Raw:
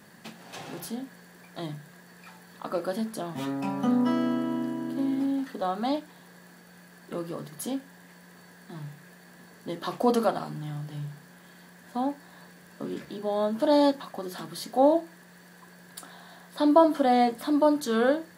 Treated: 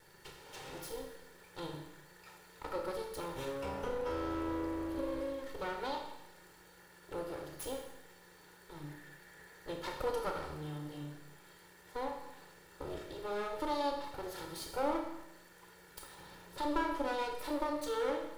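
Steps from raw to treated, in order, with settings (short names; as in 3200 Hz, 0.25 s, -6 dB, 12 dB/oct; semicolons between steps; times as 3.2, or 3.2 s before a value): minimum comb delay 2.2 ms; 16.18–16.58 low shelf 420 Hz +9.5 dB; compressor 2:1, threshold -31 dBFS, peak gain reduction 9 dB; 8.88–9.74 bell 1800 Hz +6.5 dB 0.43 oct; reverb RT60 0.90 s, pre-delay 27 ms, DRR 3 dB; gain -6.5 dB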